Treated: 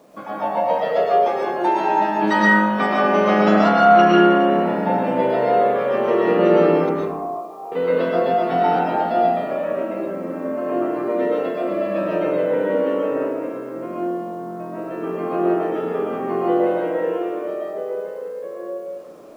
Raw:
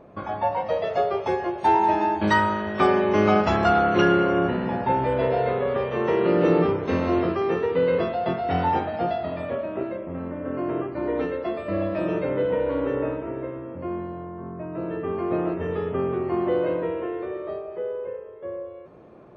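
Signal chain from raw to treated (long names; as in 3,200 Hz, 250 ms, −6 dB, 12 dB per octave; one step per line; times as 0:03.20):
high-pass filter 180 Hz 24 dB per octave
notch filter 370 Hz, Q 12
0:06.89–0:07.72: formant resonators in series a
bit reduction 10 bits
comb and all-pass reverb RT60 1.2 s, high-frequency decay 0.35×, pre-delay 80 ms, DRR −4.5 dB
level −1 dB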